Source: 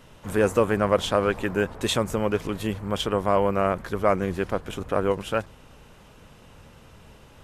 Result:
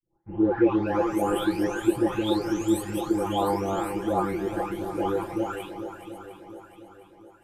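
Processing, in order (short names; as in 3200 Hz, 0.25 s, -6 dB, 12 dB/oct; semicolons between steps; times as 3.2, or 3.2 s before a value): spectral delay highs late, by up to 0.87 s; expander -38 dBFS; high shelf 12000 Hz +11.5 dB; small resonant body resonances 340/820 Hz, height 18 dB, ringing for 85 ms; on a send: swung echo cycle 0.708 s, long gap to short 1.5:1, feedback 43%, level -10 dB; on the sum: gain -5 dB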